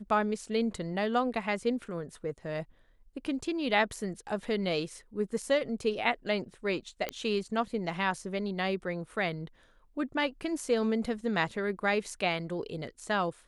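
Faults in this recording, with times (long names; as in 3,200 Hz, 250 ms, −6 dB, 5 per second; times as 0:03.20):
0:07.09: click −17 dBFS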